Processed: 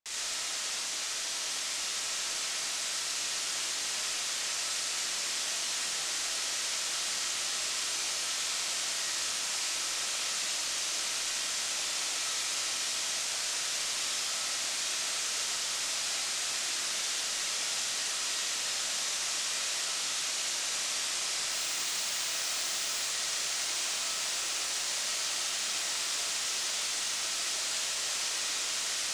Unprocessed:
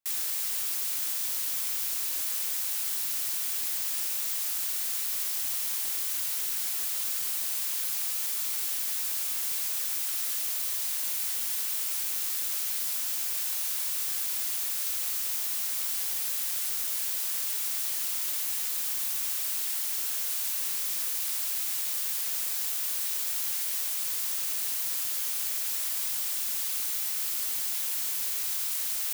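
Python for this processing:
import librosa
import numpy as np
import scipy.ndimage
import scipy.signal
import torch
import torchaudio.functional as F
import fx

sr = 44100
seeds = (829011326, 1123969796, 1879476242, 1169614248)

y = scipy.signal.sosfilt(scipy.signal.butter(4, 7500.0, 'lowpass', fs=sr, output='sos'), x)
y = fx.dmg_noise_colour(y, sr, seeds[0], colour='blue', level_db=-52.0, at=(21.49, 23.02), fade=0.02)
y = fx.echo_diffused(y, sr, ms=1699, feedback_pct=77, wet_db=-7.0)
y = fx.rev_freeverb(y, sr, rt60_s=0.67, hf_ratio=0.85, predelay_ms=25, drr_db=-4.0)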